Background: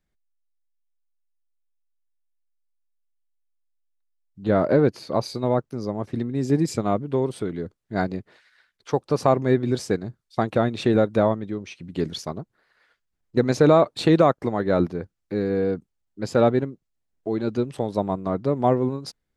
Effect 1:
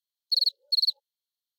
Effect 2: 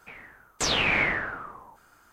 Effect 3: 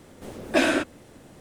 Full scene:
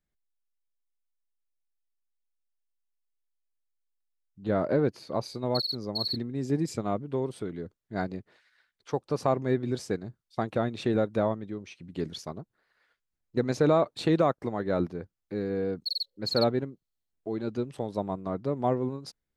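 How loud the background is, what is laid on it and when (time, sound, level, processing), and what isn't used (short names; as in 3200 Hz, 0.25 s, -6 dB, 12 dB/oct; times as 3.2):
background -7 dB
5.23 add 1 -8 dB + doubler 32 ms -8.5 dB
15.54 add 1 -8 dB
not used: 2, 3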